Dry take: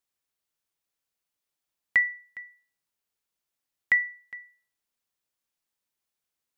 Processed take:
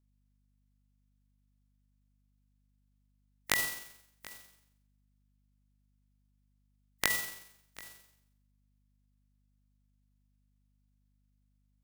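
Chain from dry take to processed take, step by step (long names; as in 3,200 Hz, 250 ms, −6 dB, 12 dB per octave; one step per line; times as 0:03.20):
compressing power law on the bin magnitudes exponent 0.26
mains hum 50 Hz, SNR 29 dB
time stretch by overlap-add 1.8×, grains 90 ms
level −6.5 dB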